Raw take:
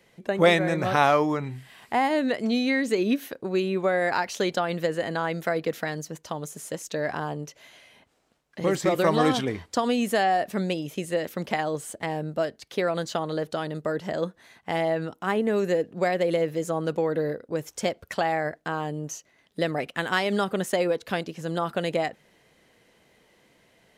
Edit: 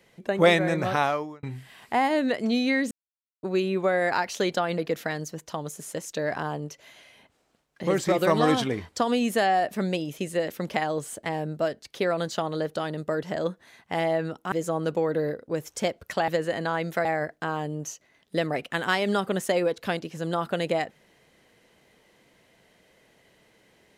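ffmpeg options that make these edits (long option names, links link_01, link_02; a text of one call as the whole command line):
ffmpeg -i in.wav -filter_complex "[0:a]asplit=8[link_01][link_02][link_03][link_04][link_05][link_06][link_07][link_08];[link_01]atrim=end=1.43,asetpts=PTS-STARTPTS,afade=type=out:start_time=0.79:duration=0.64[link_09];[link_02]atrim=start=1.43:end=2.91,asetpts=PTS-STARTPTS,afade=type=in:duration=0.004:curve=hsin,afade=type=out:start_time=1.476:duration=0.004:curve=hsin[link_10];[link_03]atrim=start=2.91:end=3.43,asetpts=PTS-STARTPTS,volume=0[link_11];[link_04]atrim=start=3.43:end=4.782,asetpts=PTS-STARTPTS,afade=type=in:duration=0.004:curve=hsin[link_12];[link_05]atrim=start=5.548:end=15.292[link_13];[link_06]atrim=start=16.528:end=18.292[link_14];[link_07]atrim=start=4.778:end=5.552[link_15];[link_08]atrim=start=18.288[link_16];[link_09][link_10][link_11][link_12]concat=n=4:v=0:a=1[link_17];[link_17][link_13]acrossfade=duration=0.004:curve1=hsin:curve2=hsin[link_18];[link_18][link_14]acrossfade=duration=0.004:curve1=hsin:curve2=hsin[link_19];[link_19][link_15]acrossfade=duration=0.004:curve1=hsin:curve2=hsin[link_20];[link_20][link_16]acrossfade=duration=0.004:curve1=hsin:curve2=hsin" out.wav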